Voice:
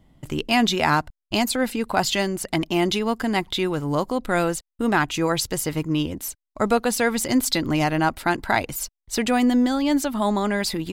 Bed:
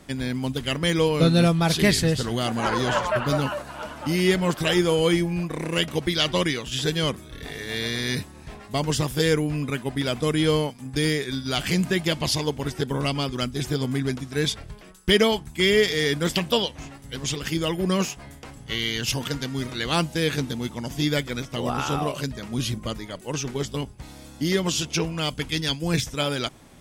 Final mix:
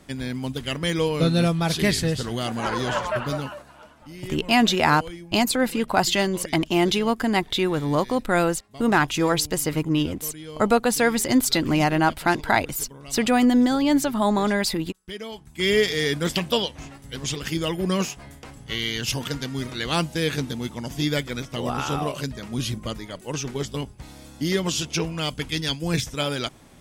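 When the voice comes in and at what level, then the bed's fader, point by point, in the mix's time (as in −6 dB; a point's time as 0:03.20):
4.00 s, +1.0 dB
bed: 0:03.20 −2 dB
0:04.09 −17.5 dB
0:15.21 −17.5 dB
0:15.71 −0.5 dB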